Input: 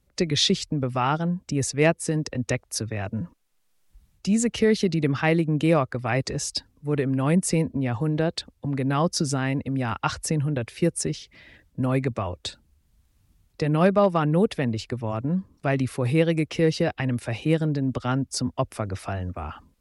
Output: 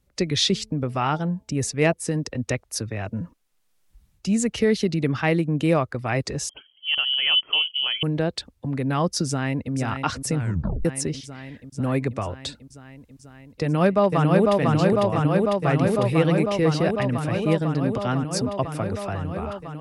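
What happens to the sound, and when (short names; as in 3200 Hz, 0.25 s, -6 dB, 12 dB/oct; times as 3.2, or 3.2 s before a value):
0.47–1.93 de-hum 217.1 Hz, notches 4
6.49–8.03 inverted band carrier 3200 Hz
9.27–9.73 echo throw 0.49 s, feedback 80%, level -7.5 dB
10.37 tape stop 0.48 s
13.62–14.53 echo throw 0.5 s, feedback 85%, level -1.5 dB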